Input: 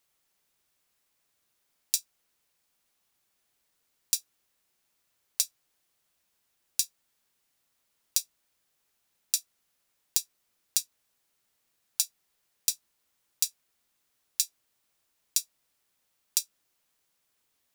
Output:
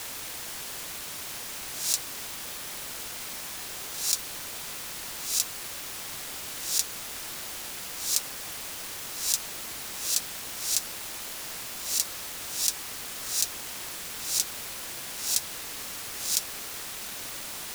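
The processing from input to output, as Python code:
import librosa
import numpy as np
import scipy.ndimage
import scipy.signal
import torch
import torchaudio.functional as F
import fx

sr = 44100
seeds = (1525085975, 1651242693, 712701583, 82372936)

y = fx.spec_swells(x, sr, rise_s=0.72)
y = np.sign(y) * np.maximum(np.abs(y) - 10.0 ** (-37.5 / 20.0), 0.0)
y = fx.quant_dither(y, sr, seeds[0], bits=6, dither='triangular')
y = fx.doppler_dist(y, sr, depth_ms=0.44)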